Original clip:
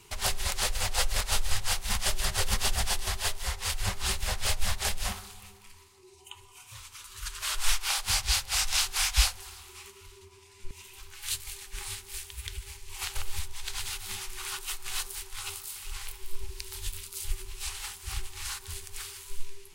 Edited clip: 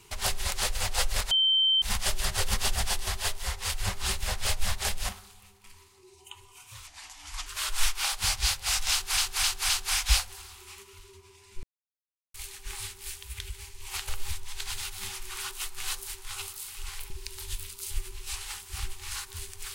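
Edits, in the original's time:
0:01.31–0:01.82: beep over 3,110 Hz −20 dBFS
0:05.09–0:05.64: clip gain −6 dB
0:06.87–0:07.32: play speed 76%
0:08.77–0:09.03: repeat, 4 plays
0:10.71–0:11.42: silence
0:16.18–0:16.44: remove

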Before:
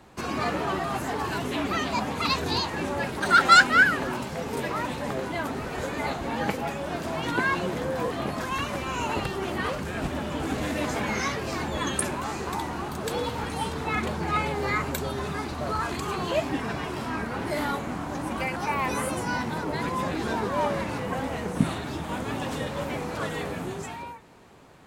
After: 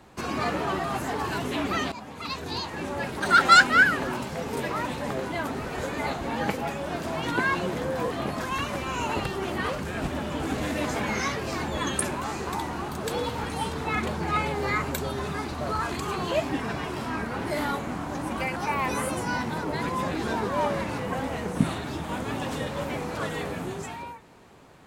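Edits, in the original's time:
0:01.92–0:03.37: fade in, from −14.5 dB

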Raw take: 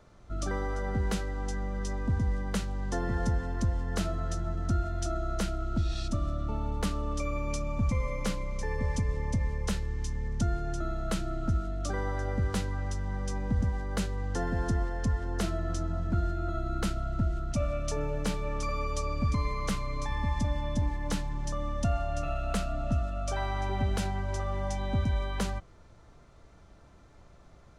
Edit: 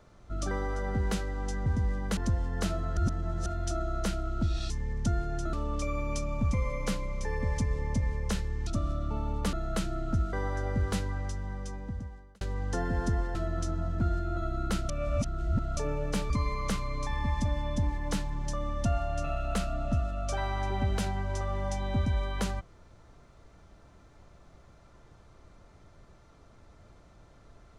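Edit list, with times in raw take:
0:01.66–0:02.09: remove
0:02.60–0:03.52: remove
0:04.32–0:04.81: reverse
0:06.05–0:06.91: swap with 0:10.05–0:10.88
0:11.68–0:11.95: remove
0:12.69–0:14.03: fade out
0:14.97–0:15.47: remove
0:17.01–0:17.89: reverse
0:18.42–0:19.29: remove

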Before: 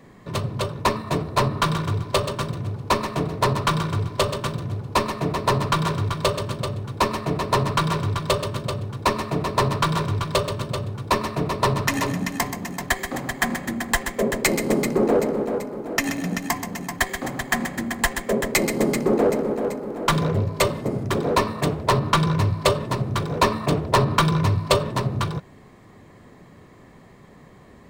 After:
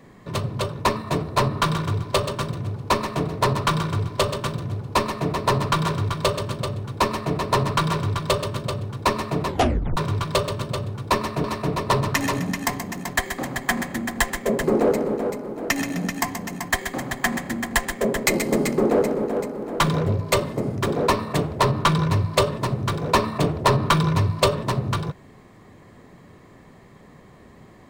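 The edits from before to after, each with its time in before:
0:09.47: tape stop 0.50 s
0:11.17–0:11.44: repeat, 2 plays
0:14.37–0:14.92: remove

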